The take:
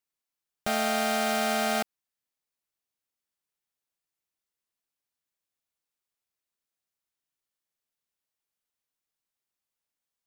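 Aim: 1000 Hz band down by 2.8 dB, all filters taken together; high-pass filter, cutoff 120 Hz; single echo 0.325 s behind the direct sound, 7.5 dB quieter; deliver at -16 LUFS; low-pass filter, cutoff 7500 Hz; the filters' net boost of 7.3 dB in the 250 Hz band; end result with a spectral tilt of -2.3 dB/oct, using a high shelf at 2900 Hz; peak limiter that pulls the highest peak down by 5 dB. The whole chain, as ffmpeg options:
-af "highpass=120,lowpass=7.5k,equalizer=f=250:t=o:g=9,equalizer=f=1k:t=o:g=-6.5,highshelf=f=2.9k:g=7.5,alimiter=limit=-16.5dB:level=0:latency=1,aecho=1:1:325:0.422,volume=12dB"

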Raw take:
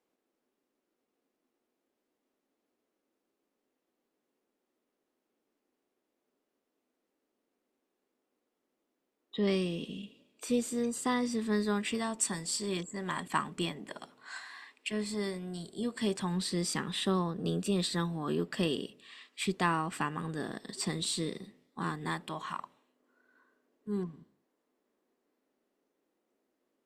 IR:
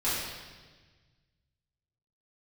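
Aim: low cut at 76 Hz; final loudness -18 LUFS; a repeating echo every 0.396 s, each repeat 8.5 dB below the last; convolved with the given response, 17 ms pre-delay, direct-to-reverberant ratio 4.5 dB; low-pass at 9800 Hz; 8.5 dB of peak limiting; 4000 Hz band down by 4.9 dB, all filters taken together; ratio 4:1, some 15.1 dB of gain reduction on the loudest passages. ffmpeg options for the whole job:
-filter_complex "[0:a]highpass=76,lowpass=9.8k,equalizer=f=4k:t=o:g=-6,acompressor=threshold=-44dB:ratio=4,alimiter=level_in=12.5dB:limit=-24dB:level=0:latency=1,volume=-12.5dB,aecho=1:1:396|792|1188|1584:0.376|0.143|0.0543|0.0206,asplit=2[a][b];[1:a]atrim=start_sample=2205,adelay=17[c];[b][c]afir=irnorm=-1:irlink=0,volume=-14.5dB[d];[a][d]amix=inputs=2:normalize=0,volume=28dB"

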